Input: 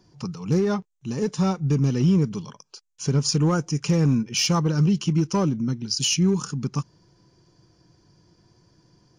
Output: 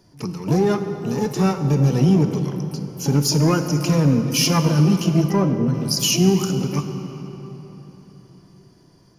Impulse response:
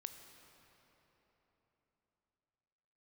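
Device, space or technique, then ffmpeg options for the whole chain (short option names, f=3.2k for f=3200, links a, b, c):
shimmer-style reverb: -filter_complex "[0:a]asplit=2[a][b];[b]asetrate=88200,aresample=44100,atempo=0.5,volume=-10dB[c];[a][c]amix=inputs=2:normalize=0[d];[1:a]atrim=start_sample=2205[e];[d][e]afir=irnorm=-1:irlink=0,asettb=1/sr,asplit=3[f][g][h];[f]atrim=end=5.314[i];[g]atrim=start=5.31:end=5.74,asetpts=PTS-STARTPTS,afade=t=in:d=0.004:c=qsin,afade=t=out:st=0.426:d=0.004:c=qsin,highshelf=f=2.7k:g=-10.5[j];[h]atrim=start=5.736[k];[i][j]acrossfade=d=0.004:c1=hsin:c2=qsin[l];[l][k]acrossfade=d=0.004:c1=qsin:c2=hsin,volume=7.5dB"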